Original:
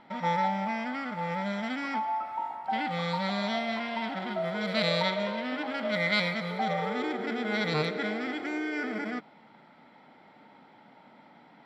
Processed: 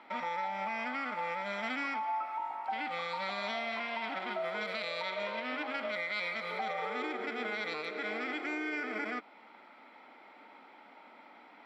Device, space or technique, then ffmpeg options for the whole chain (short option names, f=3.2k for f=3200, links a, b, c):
laptop speaker: -af "highpass=f=270:w=0.5412,highpass=f=270:w=1.3066,equalizer=f=1.2k:t=o:w=0.46:g=5.5,equalizer=f=2.4k:t=o:w=0.38:g=8,alimiter=level_in=2dB:limit=-24dB:level=0:latency=1:release=269,volume=-2dB,volume=-1dB"